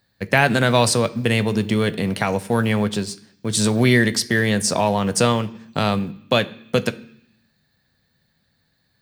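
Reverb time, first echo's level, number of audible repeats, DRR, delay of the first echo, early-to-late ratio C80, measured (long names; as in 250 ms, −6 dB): 0.70 s, no echo audible, no echo audible, 11.0 dB, no echo audible, 21.0 dB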